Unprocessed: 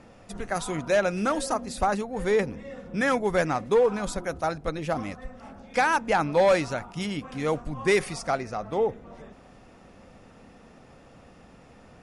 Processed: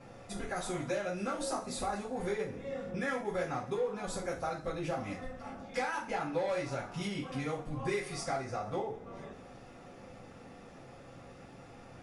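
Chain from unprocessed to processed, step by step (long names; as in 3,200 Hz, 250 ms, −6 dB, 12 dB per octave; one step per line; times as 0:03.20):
downward compressor 5 to 1, threshold −33 dBFS, peak gain reduction 14 dB
coupled-rooms reverb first 0.32 s, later 1.6 s, from −21 dB, DRR −8 dB
level −8.5 dB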